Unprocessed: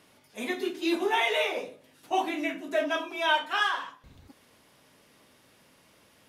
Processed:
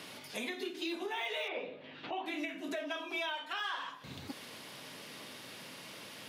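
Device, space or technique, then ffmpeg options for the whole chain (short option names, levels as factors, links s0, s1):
broadcast voice chain: -filter_complex "[0:a]highpass=f=110:w=0.5412,highpass=f=110:w=1.3066,deesser=0.9,acompressor=threshold=0.00631:ratio=3,equalizer=f=4300:t=o:w=0.49:g=3,alimiter=level_in=5.96:limit=0.0631:level=0:latency=1:release=418,volume=0.168,asettb=1/sr,asplit=3[s0][s1][s2];[s0]atrim=end=1.484[s3];[s1]atrim=start=1.48:end=2.26,asetpts=PTS-STARTPTS,afade=t=in:d=0.004:c=qsin,afade=t=out:st=0.776:d=0.004:c=qsin,lowpass=f=3300:w=0.5412,lowpass=f=3300:w=1.3066[s4];[s2]atrim=start=2.256[s5];[s3][s4]acrossfade=d=0.004:c1=hsin:c2=qsin[s6];[s6][s5]acrossfade=d=0.004:c1=qsin:c2=hsin,equalizer=f=3000:t=o:w=1.5:g=4.5,volume=2.99"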